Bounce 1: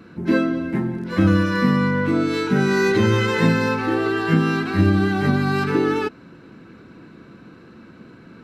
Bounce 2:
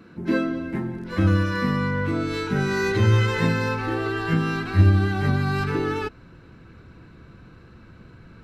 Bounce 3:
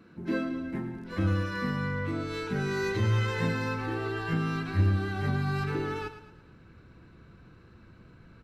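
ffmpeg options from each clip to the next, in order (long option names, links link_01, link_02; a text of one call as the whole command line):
ffmpeg -i in.wav -af "asubboost=boost=11:cutoff=76,volume=-3.5dB" out.wav
ffmpeg -i in.wav -filter_complex "[0:a]asoftclip=type=tanh:threshold=-8dB,asplit=2[link_01][link_02];[link_02]aecho=0:1:111|222|333|444:0.266|0.114|0.0492|0.0212[link_03];[link_01][link_03]amix=inputs=2:normalize=0,volume=-7dB" out.wav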